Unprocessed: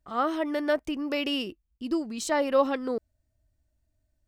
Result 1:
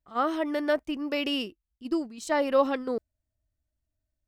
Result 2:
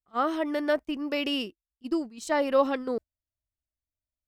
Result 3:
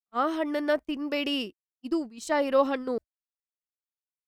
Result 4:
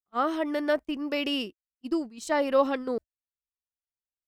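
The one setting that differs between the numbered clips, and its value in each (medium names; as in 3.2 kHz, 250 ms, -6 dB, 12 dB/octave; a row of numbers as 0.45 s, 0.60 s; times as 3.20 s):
gate, range: -9 dB, -22 dB, -55 dB, -40 dB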